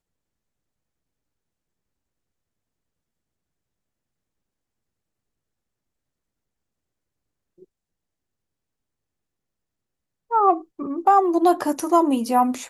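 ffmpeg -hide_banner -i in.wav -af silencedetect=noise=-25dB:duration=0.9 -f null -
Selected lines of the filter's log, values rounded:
silence_start: 0.00
silence_end: 10.32 | silence_duration: 10.32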